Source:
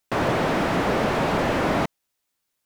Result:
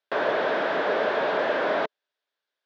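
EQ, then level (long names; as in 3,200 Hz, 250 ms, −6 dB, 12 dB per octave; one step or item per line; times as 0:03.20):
loudspeaker in its box 340–4,900 Hz, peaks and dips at 430 Hz +7 dB, 610 Hz +9 dB, 1,000 Hz +3 dB, 1,600 Hz +10 dB, 3,500 Hz +6 dB
−6.5 dB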